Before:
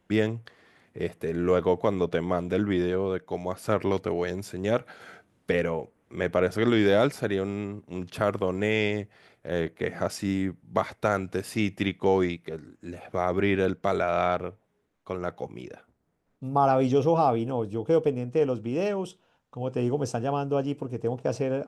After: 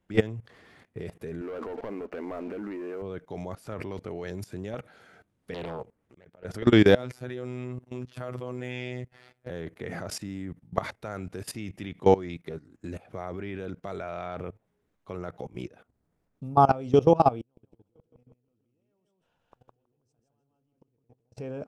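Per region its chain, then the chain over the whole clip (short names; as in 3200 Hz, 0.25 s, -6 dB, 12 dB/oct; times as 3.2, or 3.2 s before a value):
1.41–3.02 brick-wall FIR band-pass 200–2900 Hz + sample leveller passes 2 + compressor 2:1, threshold -27 dBFS
5.54–6.45 auto swell 0.708 s + compressor 4:1, threshold -32 dBFS + Doppler distortion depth 0.67 ms
6.95–9.5 HPF 51 Hz + robotiser 125 Hz
17.41–21.37 negative-ratio compressor -30 dBFS, ratio -0.5 + flipped gate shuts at -33 dBFS, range -36 dB + feedback echo 0.161 s, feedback 28%, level -3 dB
whole clip: low shelf 140 Hz +7 dB; level quantiser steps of 20 dB; gain +4.5 dB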